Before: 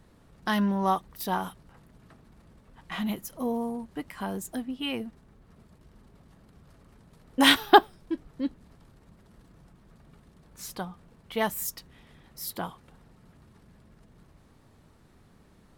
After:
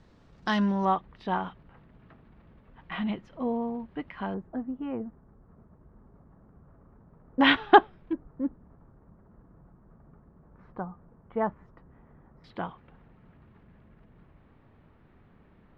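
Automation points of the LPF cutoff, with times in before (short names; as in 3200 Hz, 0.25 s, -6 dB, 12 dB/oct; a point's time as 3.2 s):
LPF 24 dB/oct
6300 Hz
from 0.85 s 3100 Hz
from 4.34 s 1400 Hz
from 7.41 s 2900 Hz
from 8.13 s 1400 Hz
from 12.44 s 2800 Hz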